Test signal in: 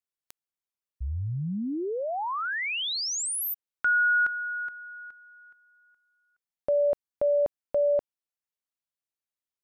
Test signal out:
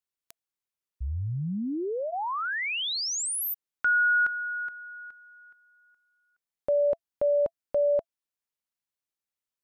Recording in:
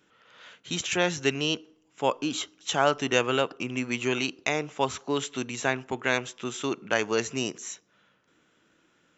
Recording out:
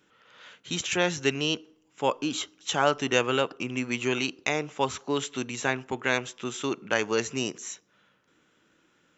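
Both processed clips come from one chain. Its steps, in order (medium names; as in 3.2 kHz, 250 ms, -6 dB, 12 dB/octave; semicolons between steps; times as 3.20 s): band-stop 670 Hz, Q 18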